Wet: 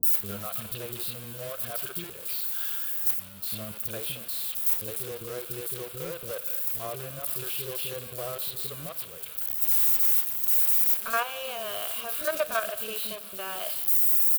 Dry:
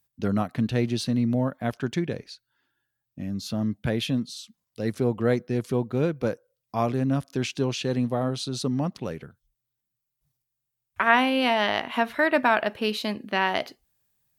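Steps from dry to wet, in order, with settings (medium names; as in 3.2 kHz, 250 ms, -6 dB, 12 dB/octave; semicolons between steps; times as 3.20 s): zero-crossing glitches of -16.5 dBFS; peaking EQ 130 Hz -9.5 dB 0.85 oct; harmonic-percussive split percussive -5 dB; treble shelf 7.5 kHz +2.5 dB; level held to a coarse grid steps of 10 dB; static phaser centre 1.3 kHz, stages 8; companded quantiser 4-bit; three bands offset in time lows, highs, mids 30/60 ms, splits 390/4100 Hz; reverberation RT60 1.9 s, pre-delay 13 ms, DRR 16.5 dB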